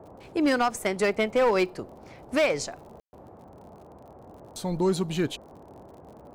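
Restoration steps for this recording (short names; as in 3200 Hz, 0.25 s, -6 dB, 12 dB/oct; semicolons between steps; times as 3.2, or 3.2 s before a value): clip repair -17 dBFS; de-click; room tone fill 3–3.13; noise print and reduce 22 dB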